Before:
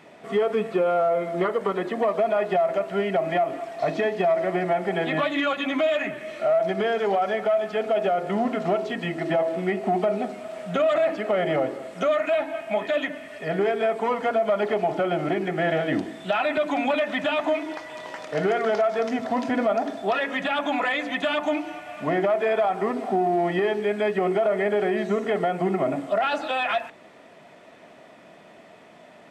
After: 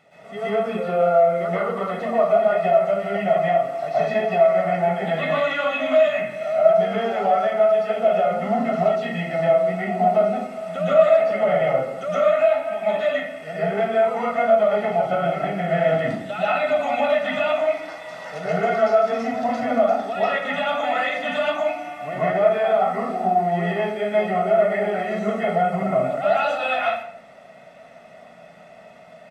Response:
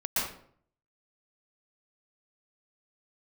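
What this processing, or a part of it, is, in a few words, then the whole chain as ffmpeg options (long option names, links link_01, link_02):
microphone above a desk: -filter_complex "[0:a]aecho=1:1:1.5:0.65[link_01];[1:a]atrim=start_sample=2205[link_02];[link_01][link_02]afir=irnorm=-1:irlink=0,volume=-8dB"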